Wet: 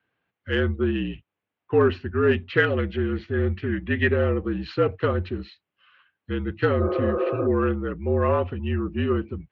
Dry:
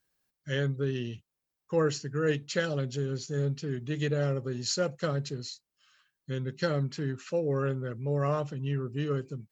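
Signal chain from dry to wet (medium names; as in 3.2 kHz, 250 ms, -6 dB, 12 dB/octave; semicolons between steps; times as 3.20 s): 6.82–7.44 s: spectral replace 330–1700 Hz before; mistuned SSB -53 Hz 150–3100 Hz; in parallel at -6 dB: saturation -24.5 dBFS, distortion -15 dB; 2.58–4.16 s: on the sum: peaking EQ 1.9 kHz +9.5 dB 0.46 oct; trim +5.5 dB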